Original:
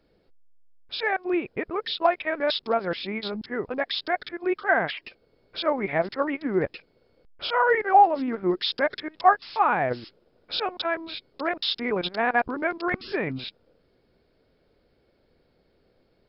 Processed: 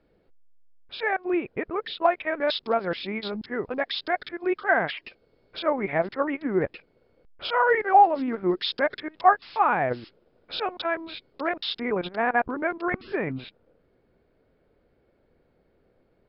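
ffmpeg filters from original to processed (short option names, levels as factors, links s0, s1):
-af "asetnsamples=n=441:p=0,asendcmd='2.42 lowpass f 4700;5.59 lowpass f 3000;7.45 lowpass f 4700;8.79 lowpass f 3500;11.8 lowpass f 2300',lowpass=2900"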